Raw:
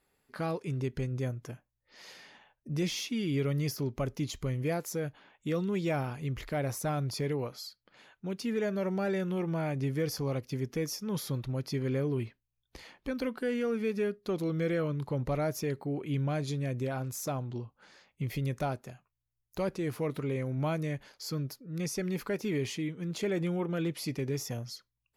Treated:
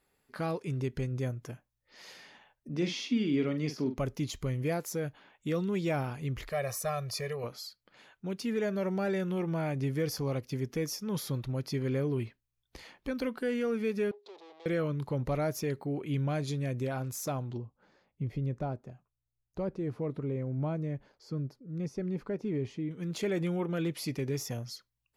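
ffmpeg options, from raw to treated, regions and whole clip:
-filter_complex "[0:a]asettb=1/sr,asplit=3[a][b][c];[a]atrim=end=2.694[d];[b]atrim=start=2.69:end=3.98,asetpts=PTS-STARTPTS,afade=t=in:d=0.004:c=qsin,afade=t=out:st=1.286:d=0.004:c=qsin,highpass=190,lowpass=4.7k,equalizer=f=250:t=o:w=0.49:g=8,asplit=2[e][f];[f]adelay=46,volume=-9dB[g];[e][g]amix=inputs=2:normalize=0,atrim=end_sample=56889[h];[c]atrim=start=3.976[i];[d][h]acrossfade=d=0.004:c1=hsin:c2=qsin[j];[j][i]acrossfade=d=0.004:c1=qsin:c2=hsin,asettb=1/sr,asplit=3[k][l][m];[k]atrim=end=6.504[n];[l]atrim=start=6.5:end=7.44,asetpts=PTS-STARTPTS,afade=t=in:d=0.004:c=qsin,afade=t=out:st=0.936:d=0.004:c=qsin,lowshelf=f=480:g=-9.5,bandreject=f=3.3k:w=5.6,aecho=1:1:1.7:0.94,atrim=end_sample=41454[o];[m]atrim=start=7.436[p];[n][o]acrossfade=d=0.004:c1=hsin:c2=qsin[q];[q][p]acrossfade=d=0.004:c1=qsin:c2=hsin,asettb=1/sr,asplit=3[r][s][t];[r]atrim=end=14.114[u];[s]atrim=start=14.11:end=14.66,asetpts=PTS-STARTPTS,afade=t=in:d=0.004:c=qsin,afade=t=out:st=0.546:d=0.004:c=qsin,aeval=exprs='(tanh(316*val(0)+0.45)-tanh(0.45))/316':c=same,highpass=f=390:w=0.5412,highpass=f=390:w=1.3066,equalizer=f=410:t=q:w=4:g=9,equalizer=f=840:t=q:w=4:g=6,equalizer=f=1.5k:t=q:w=4:g=-9,equalizer=f=3.7k:t=q:w=4:g=6,lowpass=f=5.6k:w=0.5412,lowpass=f=5.6k:w=1.3066[v];[t]atrim=start=14.656[w];[u][v]acrossfade=d=0.004:c1=hsin:c2=qsin[x];[x][w]acrossfade=d=0.004:c1=qsin:c2=hsin,asettb=1/sr,asplit=3[y][z][aa];[y]atrim=end=17.574[ab];[z]atrim=start=17.57:end=22.91,asetpts=PTS-STARTPTS,afade=t=in:d=0.004:c=qsin,afade=t=out:st=5.336:d=0.004:c=qsin,lowpass=3.9k,equalizer=f=2.8k:t=o:w=2.9:g=-12.5[ac];[aa]atrim=start=22.906[ad];[ab][ac]acrossfade=d=0.004:c1=hsin:c2=qsin[ae];[ae][ad]acrossfade=d=0.004:c1=qsin:c2=hsin"

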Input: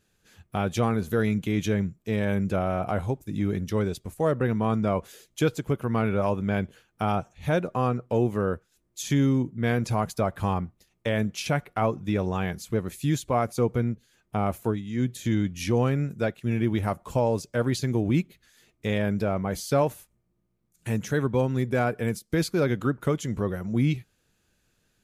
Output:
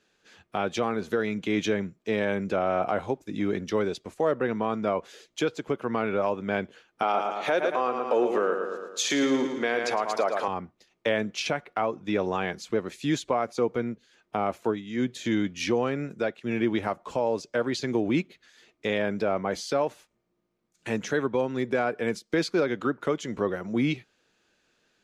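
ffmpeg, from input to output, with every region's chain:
-filter_complex "[0:a]asettb=1/sr,asplit=3[a][b][c];[a]atrim=end=7.024[d];[b]atrim=start=7.02:end=10.48,asetpts=PTS-STARTPTS,afade=t=in:d=0.004:c=qsin,afade=t=out:st=3.456:d=0.004:c=qsin,aecho=1:1:111|222|333|444|555|666:0.398|0.191|0.0917|0.044|0.0211|0.0101,atrim=end_sample=152586,acontrast=85,highpass=370[e];[c]atrim=start=10.476[f];[d][e]acrossfade=d=0.004:c1=hsin:c2=qsin[g];[g][f]acrossfade=d=0.004:c1=qsin:c2=hsin,acrossover=split=240 6600:gain=0.126 1 0.0794[h][i][j];[h][i][j]amix=inputs=3:normalize=0,alimiter=limit=-19.5dB:level=0:latency=1:release=333,volume=4.5dB"

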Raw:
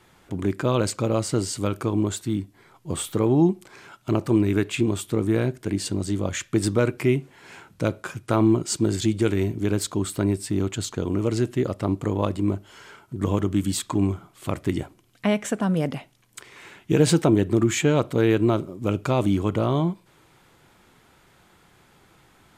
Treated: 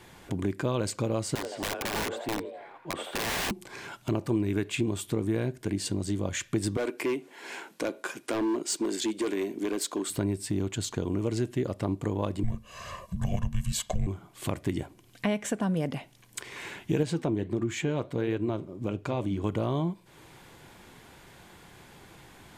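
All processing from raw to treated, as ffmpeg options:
-filter_complex "[0:a]asettb=1/sr,asplit=3[a][b][c];[a]atrim=end=1.354[d];[b]atrim=start=1.35:end=3.51,asetpts=PTS-STARTPTS,afade=t=in:d=0.004:c=qsin,afade=t=out:st=2.156:d=0.004:c=qsin,acrossover=split=260 3000:gain=0.126 1 0.0891[e][f][g];[e][f][g]amix=inputs=3:normalize=0,asplit=6[h][i][j][k][l][m];[i]adelay=82,afreqshift=130,volume=-9dB[n];[j]adelay=164,afreqshift=260,volume=-15.6dB[o];[k]adelay=246,afreqshift=390,volume=-22.1dB[p];[l]adelay=328,afreqshift=520,volume=-28.7dB[q];[m]adelay=410,afreqshift=650,volume=-35.2dB[r];[h][n][o][p][q][r]amix=inputs=6:normalize=0,atrim=end_sample=95256,aeval=exprs='(mod(15*val(0)+1,2)-1)/15':c=same[s];[c]atrim=start=3.506[t];[d][s]acrossfade=d=0.004:c1=hsin:c2=qsin[u];[u][t]acrossfade=d=0.004:c1=qsin:c2=hsin,asettb=1/sr,asplit=3[v][w][x];[v]atrim=end=6.774[y];[w]atrim=start=6.77:end=10.1,asetpts=PTS-STARTPTS,afade=t=in:d=0.004:c=qsin,afade=t=out:st=3.326:d=0.004:c=qsin,highpass=f=260:w=0.5412,highpass=f=260:w=1.3066,asoftclip=type=hard:threshold=-20.5dB[z];[x]atrim=start=10.096[aa];[y][z]acrossfade=d=0.004:c1=hsin:c2=qsin[ab];[ab][aa]acrossfade=d=0.004:c1=qsin:c2=hsin,asettb=1/sr,asplit=3[ac][ad][ae];[ac]atrim=end=12.434[af];[ad]atrim=start=12.43:end=14.07,asetpts=PTS-STARTPTS,afade=t=in:d=0.004:c=qsin,afade=t=out:st=1.636:d=0.004:c=qsin,afreqshift=-320,aecho=1:1:1.8:0.65,atrim=end_sample=72324[ag];[ae]atrim=start=14.066[ah];[af][ag]acrossfade=d=0.004:c1=hsin:c2=qsin[ai];[ai][ah]acrossfade=d=0.004:c1=qsin:c2=hsin,asettb=1/sr,asplit=3[aj][ak][al];[aj]atrim=end=17.034[am];[ak]atrim=start=17.03:end=19.44,asetpts=PTS-STARTPTS,afade=t=in:d=0.004:c=qsin,afade=t=out:st=2.406:d=0.004:c=qsin,highshelf=f=7k:g=-10,flanger=delay=2.3:depth=6.7:regen=-78:speed=1.5:shape=triangular[an];[al]atrim=start=19.436[ao];[am][an]acrossfade=d=0.004:c1=hsin:c2=qsin[ap];[ap][ao]acrossfade=d=0.004:c1=qsin:c2=hsin,bandreject=f=1.3k:w=9.1,acompressor=threshold=-39dB:ratio=2,volume=5dB"

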